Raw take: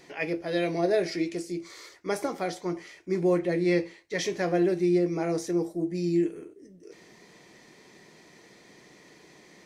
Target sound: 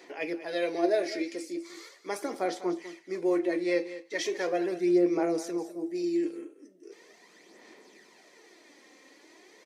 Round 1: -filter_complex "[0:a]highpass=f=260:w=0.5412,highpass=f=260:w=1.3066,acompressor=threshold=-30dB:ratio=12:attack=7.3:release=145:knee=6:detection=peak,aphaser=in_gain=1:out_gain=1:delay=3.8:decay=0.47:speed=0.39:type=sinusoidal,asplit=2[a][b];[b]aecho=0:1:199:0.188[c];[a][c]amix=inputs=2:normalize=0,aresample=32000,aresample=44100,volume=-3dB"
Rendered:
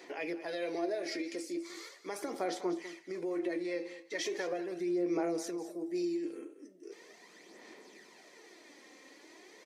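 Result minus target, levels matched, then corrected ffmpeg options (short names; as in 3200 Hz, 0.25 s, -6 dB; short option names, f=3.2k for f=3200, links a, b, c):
compressor: peak gain reduction +12 dB
-filter_complex "[0:a]highpass=f=260:w=0.5412,highpass=f=260:w=1.3066,aphaser=in_gain=1:out_gain=1:delay=3.8:decay=0.47:speed=0.39:type=sinusoidal,asplit=2[a][b];[b]aecho=0:1:199:0.188[c];[a][c]amix=inputs=2:normalize=0,aresample=32000,aresample=44100,volume=-3dB"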